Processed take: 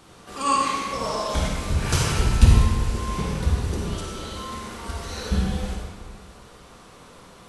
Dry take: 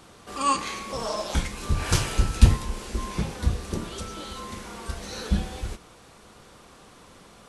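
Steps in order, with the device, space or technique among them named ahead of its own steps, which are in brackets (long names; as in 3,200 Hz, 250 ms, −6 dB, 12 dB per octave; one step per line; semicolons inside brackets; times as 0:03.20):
stairwell (convolution reverb RT60 1.6 s, pre-delay 43 ms, DRR −2 dB)
level −1 dB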